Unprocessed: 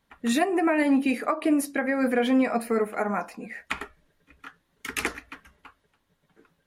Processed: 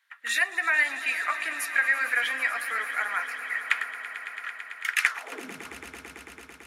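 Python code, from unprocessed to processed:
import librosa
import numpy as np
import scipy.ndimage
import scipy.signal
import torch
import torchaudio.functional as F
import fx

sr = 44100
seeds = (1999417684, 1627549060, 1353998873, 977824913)

y = fx.echo_swell(x, sr, ms=111, loudest=5, wet_db=-16)
y = fx.filter_sweep_highpass(y, sr, from_hz=1700.0, to_hz=65.0, start_s=5.07, end_s=5.72, q=2.9)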